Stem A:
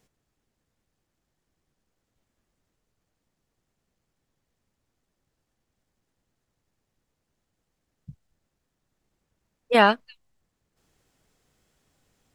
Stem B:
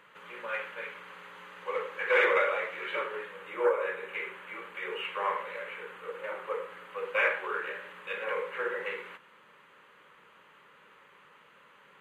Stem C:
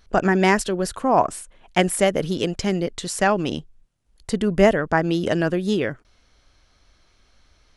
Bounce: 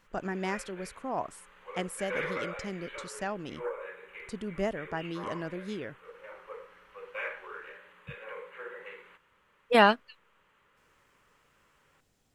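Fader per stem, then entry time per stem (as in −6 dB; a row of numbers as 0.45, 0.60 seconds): −3.0, −10.0, −16.0 decibels; 0.00, 0.00, 0.00 seconds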